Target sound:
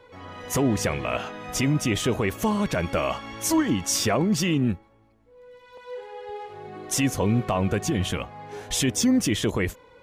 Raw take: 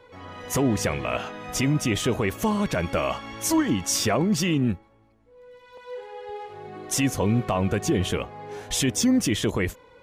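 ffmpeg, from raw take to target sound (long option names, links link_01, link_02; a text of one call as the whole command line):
ffmpeg -i in.wav -filter_complex "[0:a]asettb=1/sr,asplit=3[link_01][link_02][link_03];[link_01]atrim=end=7.834[link_04];[link_02]atrim=start=7.83:end=8.53,asetpts=PTS-STARTPTS,afade=type=in:duration=0.004:curve=qsin,afade=type=out:start_time=0.696:duration=0.004:curve=qsin,equalizer=frequency=410:width_type=o:width=0.45:gain=-9[link_05];[link_03]atrim=start=8.526[link_06];[link_04][link_05]acrossfade=duration=0.004:curve1=hsin:curve2=qsin[link_07];[link_07][link_06]acrossfade=duration=0.004:curve1=qsin:curve2=hsin" out.wav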